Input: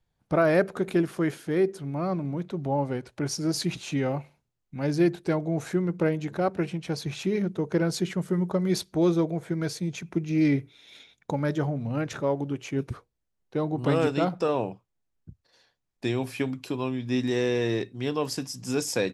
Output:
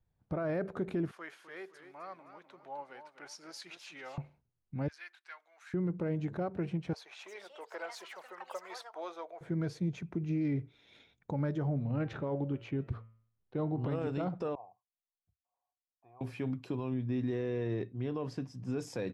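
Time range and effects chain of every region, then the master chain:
1.11–4.18 HPF 1200 Hz + warbling echo 0.257 s, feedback 36%, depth 114 cents, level -10.5 dB
4.88–5.74 HPF 1400 Hz 24 dB/oct + high shelf 4400 Hz -4.5 dB
6.93–9.41 HPF 680 Hz 24 dB/oct + echoes that change speed 0.332 s, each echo +6 st, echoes 3, each echo -6 dB
11.74–13.9 resonant high shelf 5100 Hz -6.5 dB, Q 1.5 + de-hum 112.3 Hz, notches 28
14.55–16.21 vocal tract filter a + bell 250 Hz -12.5 dB 2.3 oct
16.94–18.79 LPF 3300 Hz 6 dB/oct + notch 850 Hz, Q 14 + mismatched tape noise reduction decoder only
whole clip: bell 83 Hz +6.5 dB 1.6 oct; limiter -21 dBFS; LPF 1500 Hz 6 dB/oct; gain -4.5 dB

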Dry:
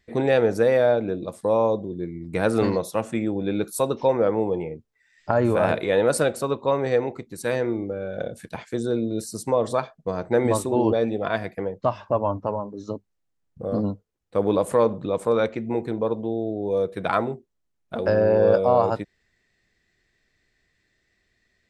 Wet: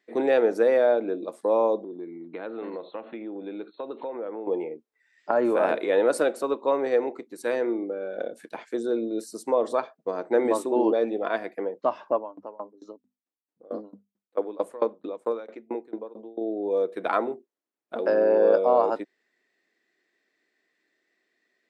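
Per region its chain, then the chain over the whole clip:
1.83–4.47 compressor 4:1, threshold -30 dBFS + brick-wall FIR low-pass 4300 Hz
12.15–16.41 notches 50/100/150/200/250 Hz + dB-ramp tremolo decaying 4.5 Hz, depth 24 dB
whole clip: Chebyshev high-pass 290 Hz, order 3; high shelf 2500 Hz -8.5 dB

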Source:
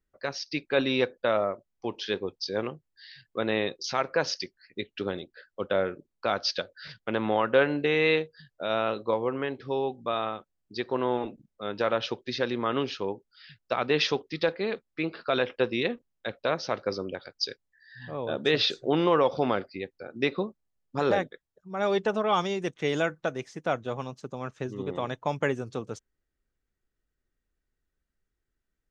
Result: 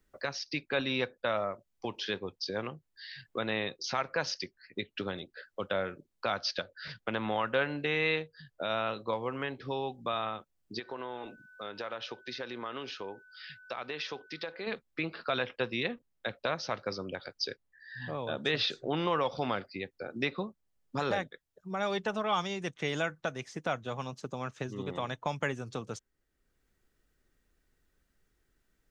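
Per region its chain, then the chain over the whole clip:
10.78–14.66 low shelf 420 Hz -11 dB + compressor 2:1, threshold -42 dBFS + whine 1500 Hz -59 dBFS
whole clip: dynamic EQ 380 Hz, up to -7 dB, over -39 dBFS, Q 0.93; three-band squash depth 40%; gain -2 dB

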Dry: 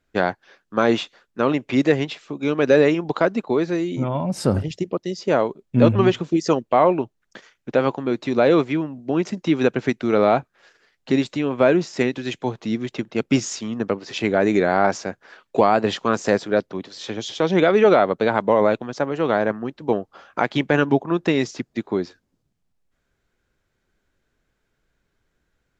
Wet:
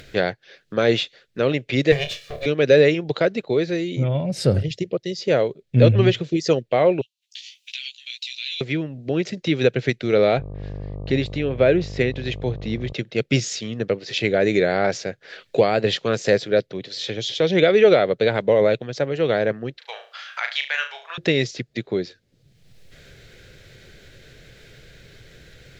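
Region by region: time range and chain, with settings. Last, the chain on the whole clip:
1.92–2.46 minimum comb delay 1.7 ms + flutter echo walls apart 4.7 m, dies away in 0.21 s + requantised 10-bit, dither none
7.01–8.61 elliptic high-pass 2700 Hz, stop band 70 dB + doubler 16 ms -3 dB
10.37–12.92 high shelf 5100 Hz -12 dB + buzz 50 Hz, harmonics 24, -33 dBFS -6 dB/oct
19.78–21.18 inverse Chebyshev high-pass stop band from 290 Hz, stop band 60 dB + flutter echo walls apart 6.2 m, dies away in 0.31 s
whole clip: ten-band EQ 125 Hz +10 dB, 250 Hz -5 dB, 500 Hz +9 dB, 1000 Hz -12 dB, 2000 Hz +7 dB, 4000 Hz +9 dB; upward compressor, threshold -22 dBFS; gain -3.5 dB

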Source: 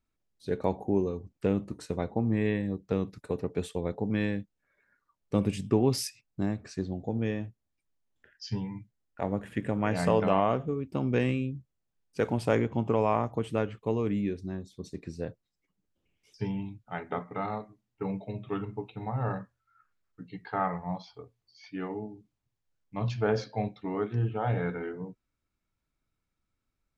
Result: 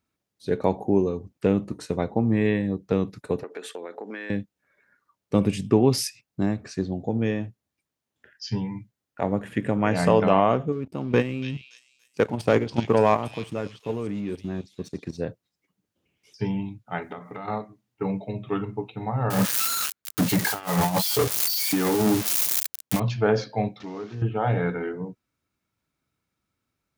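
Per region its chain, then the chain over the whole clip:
3.43–4.3 HPF 300 Hz 24 dB/oct + bell 1600 Hz +10 dB 0.84 oct + compressor 12:1, threshold -37 dBFS
10.72–15.18 level quantiser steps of 13 dB + sample leveller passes 1 + delay with a stepping band-pass 0.285 s, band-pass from 4000 Hz, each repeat 0.7 oct, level 0 dB
17.02–17.48 high shelf 4800 Hz +10 dB + compressor 5:1, threshold -39 dBFS
19.3–23 switching spikes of -25 dBFS + negative-ratio compressor -39 dBFS, ratio -0.5 + sample leveller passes 5
23.8–24.22 delta modulation 32 kbps, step -44 dBFS + compressor 2:1, threshold -44 dBFS
whole clip: HPF 91 Hz; notch 7700 Hz, Q 24; gain +6 dB

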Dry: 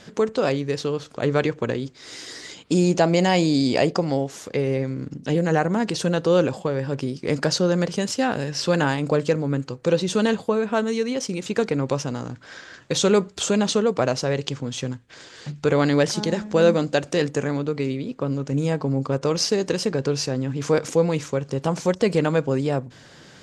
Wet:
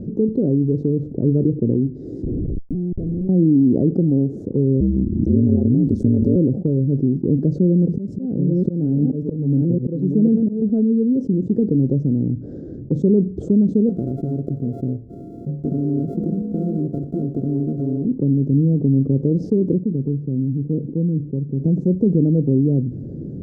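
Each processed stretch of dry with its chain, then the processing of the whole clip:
2.23–3.29 tilt -2 dB/oct + compressor 12:1, threshold -29 dBFS + Schmitt trigger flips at -35 dBFS
4.8–6.36 tone controls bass +4 dB, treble +14 dB + ring modulator 62 Hz + backwards sustainer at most 76 dB/s
7.56–10.62 reverse delay 0.556 s, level -6 dB + auto swell 0.351 s
13.89–18.05 sample sorter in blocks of 64 samples + compressor, threshold -20 dBFS + low shelf 250 Hz -9 dB
19.78–21.6 band-pass 110 Hz, Q 0.84 + bell 87 Hz -13 dB 1.3 oct
whole clip: inverse Chebyshev low-pass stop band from 940 Hz, stop band 50 dB; dynamic EQ 220 Hz, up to +3 dB, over -34 dBFS, Q 1.1; fast leveller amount 50%; gain +3.5 dB

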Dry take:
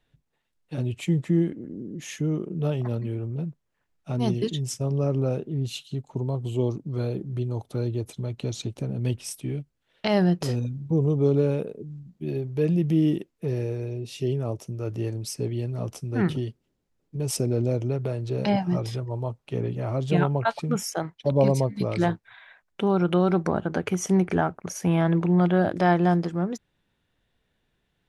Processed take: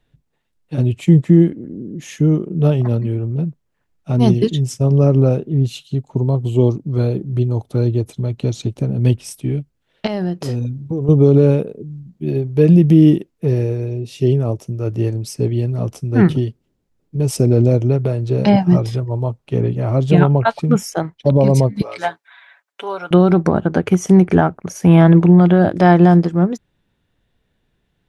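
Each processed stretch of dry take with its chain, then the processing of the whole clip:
10.06–11.09 HPF 41 Hz 24 dB/oct + bell 160 Hz -7 dB 0.33 oct + compressor 4:1, threshold -27 dBFS
21.82–23.11 HPF 790 Hz + comb 7.1 ms, depth 63%
whole clip: low shelf 480 Hz +5.5 dB; maximiser +9.5 dB; upward expander 1.5:1, over -20 dBFS

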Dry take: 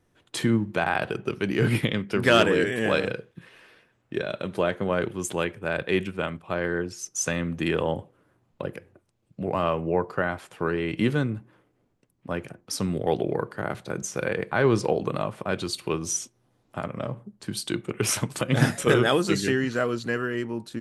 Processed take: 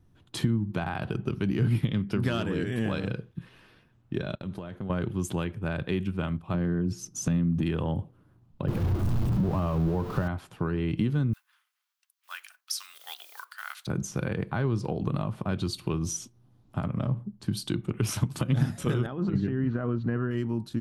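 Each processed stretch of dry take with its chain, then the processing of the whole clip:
4.35–4.9 expander -38 dBFS + compressor, threshold -34 dBFS
6.54–7.63 bell 190 Hz +11.5 dB 2.1 oct + compressor 4:1, threshold -24 dBFS
8.68–10.28 zero-crossing step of -25.5 dBFS + high shelf 2200 Hz -10.5 dB
11.33–13.87 block floating point 7-bit + HPF 1300 Hz 24 dB/oct + high shelf 2500 Hz +9.5 dB
19.06–20.31 LPF 1600 Hz + negative-ratio compressor -27 dBFS
whole clip: graphic EQ 500/2000/8000 Hz -8/-7/-7 dB; compressor 6:1, threshold -29 dBFS; low shelf 220 Hz +12 dB

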